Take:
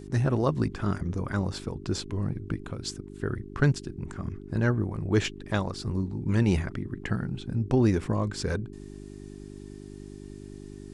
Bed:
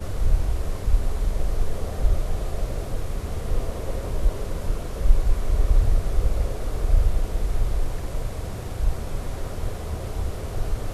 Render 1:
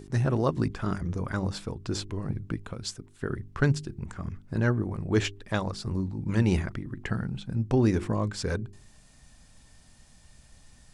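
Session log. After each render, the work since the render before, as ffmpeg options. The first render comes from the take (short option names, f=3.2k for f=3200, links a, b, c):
-af "bandreject=f=50:t=h:w=4,bandreject=f=100:t=h:w=4,bandreject=f=150:t=h:w=4,bandreject=f=200:t=h:w=4,bandreject=f=250:t=h:w=4,bandreject=f=300:t=h:w=4,bandreject=f=350:t=h:w=4,bandreject=f=400:t=h:w=4"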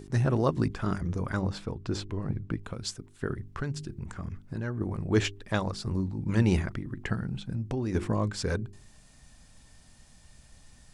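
-filter_complex "[0:a]asettb=1/sr,asplit=3[a][b][c];[a]atrim=end=1.414[d];[b]atrim=start=1.41:end=2.63,asetpts=PTS-STARTPTS,afade=t=in:d=0.004:c=qsin,afade=t=out:st=1.216:d=0.004:c=qsin,highshelf=f=6k:g=-10.5[e];[c]atrim=start=2.626[f];[d][e]acrossfade=d=0.004:c1=hsin:c2=qsin[g];[g][f]acrossfade=d=0.004:c1=qsin:c2=hsin,asettb=1/sr,asplit=3[h][i][j];[h]atrim=end=3.334[k];[i]atrim=start=3.33:end=4.81,asetpts=PTS-STARTPTS,afade=t=in:d=0.004:c=qsin,afade=t=out:st=1.476:d=0.004:c=qsin,acompressor=threshold=-31dB:ratio=3:attack=3.2:release=140:knee=1:detection=peak[l];[j]atrim=start=4.806[m];[k][l]acrossfade=d=0.004:c1=hsin:c2=qsin[n];[n][m]acrossfade=d=0.004:c1=qsin:c2=hsin,asettb=1/sr,asplit=3[o][p][q];[o]atrim=end=7.144[r];[p]atrim=start=7.14:end=7.95,asetpts=PTS-STARTPTS,afade=t=in:d=0.004:c=qsin,afade=t=out:st=0.806:d=0.004:c=qsin,acompressor=threshold=-27dB:ratio=6:attack=3.2:release=140:knee=1:detection=peak[s];[q]atrim=start=7.946[t];[r][s]acrossfade=d=0.004:c1=hsin:c2=qsin[u];[u][t]acrossfade=d=0.004:c1=qsin:c2=hsin"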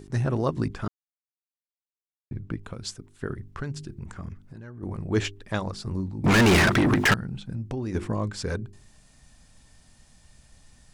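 -filter_complex "[0:a]asettb=1/sr,asplit=3[a][b][c];[a]atrim=end=4.334[d];[b]atrim=start=4.33:end=4.83,asetpts=PTS-STARTPTS,afade=t=in:d=0.004:c=qsin,afade=t=out:st=0.496:d=0.004:c=qsin,acompressor=threshold=-42dB:ratio=2.5:attack=3.2:release=140:knee=1:detection=peak[e];[c]atrim=start=4.826[f];[d][e]acrossfade=d=0.004:c1=hsin:c2=qsin[g];[g][f]acrossfade=d=0.004:c1=qsin:c2=hsin,asettb=1/sr,asplit=3[h][i][j];[h]atrim=end=6.244[k];[i]atrim=start=6.24:end=7.14,asetpts=PTS-STARTPTS,afade=t=in:d=0.004:c=qsin,afade=t=out:st=0.896:d=0.004:c=qsin,asplit=2[l][m];[m]highpass=f=720:p=1,volume=41dB,asoftclip=type=tanh:threshold=-11dB[n];[l][n]amix=inputs=2:normalize=0,lowpass=f=5.4k:p=1,volume=-6dB[o];[j]atrim=start=7.136[p];[k][o]acrossfade=d=0.004:c1=hsin:c2=qsin[q];[q][p]acrossfade=d=0.004:c1=qsin:c2=hsin,asplit=3[r][s][t];[r]atrim=end=0.88,asetpts=PTS-STARTPTS,afade=t=out:st=0.876:d=0.004:c=hsin[u];[s]atrim=start=0.88:end=2.31,asetpts=PTS-STARTPTS,volume=0[v];[t]atrim=start=2.31,asetpts=PTS-STARTPTS,afade=t=in:d=0.004:c=hsin[w];[u][v][w]concat=n=3:v=0:a=1"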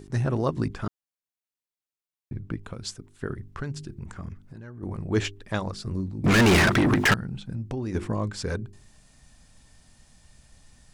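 -filter_complex "[0:a]asettb=1/sr,asplit=3[a][b][c];[a]atrim=end=5.744[d];[b]atrim=start=5.74:end=6.39,asetpts=PTS-STARTPTS,afade=t=in:d=0.004:c=qsin,afade=t=out:st=0.646:d=0.004:c=qsin,equalizer=f=880:w=4.3:g=-9[e];[c]atrim=start=6.386[f];[d][e]acrossfade=d=0.004:c1=hsin:c2=qsin[g];[g][f]acrossfade=d=0.004:c1=qsin:c2=hsin"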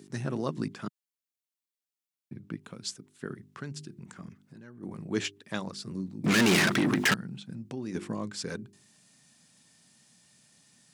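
-af "highpass=f=160:w=0.5412,highpass=f=160:w=1.3066,equalizer=f=710:t=o:w=2.9:g=-7.5"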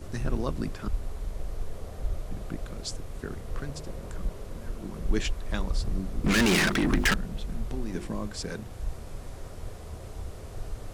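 -filter_complex "[1:a]volume=-10.5dB[a];[0:a][a]amix=inputs=2:normalize=0"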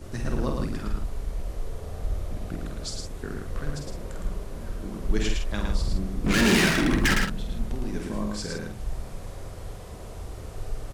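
-filter_complex "[0:a]asplit=2[a][b];[b]adelay=48,volume=-5.5dB[c];[a][c]amix=inputs=2:normalize=0,asplit=2[d][e];[e]aecho=0:1:110:0.631[f];[d][f]amix=inputs=2:normalize=0"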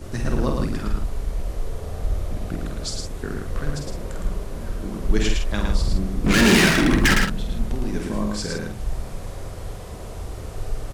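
-af "volume=5dB"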